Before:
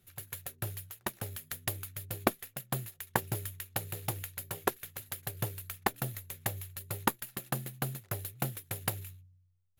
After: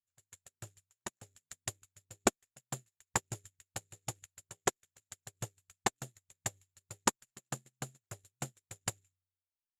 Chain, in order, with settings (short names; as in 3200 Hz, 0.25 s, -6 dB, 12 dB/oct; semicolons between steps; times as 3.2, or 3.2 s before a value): sample leveller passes 1; in parallel at -5.5 dB: wrapped overs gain 11 dB; on the sum: synth low-pass 7300 Hz, resonance Q 7.2; upward expander 2.5:1, over -40 dBFS; gain -6 dB